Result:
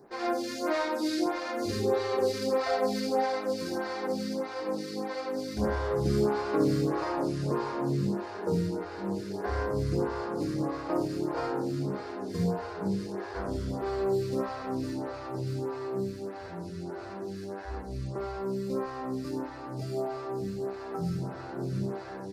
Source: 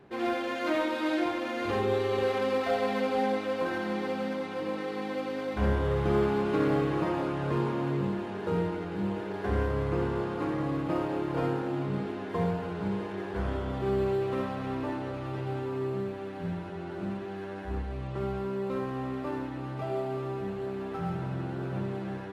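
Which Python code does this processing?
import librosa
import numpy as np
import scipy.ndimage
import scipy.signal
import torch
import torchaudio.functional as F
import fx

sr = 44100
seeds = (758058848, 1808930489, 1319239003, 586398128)

y = fx.high_shelf_res(x, sr, hz=3900.0, db=7.5, q=3.0)
y = fx.stagger_phaser(y, sr, hz=1.6)
y = y * 10.0 ** (2.5 / 20.0)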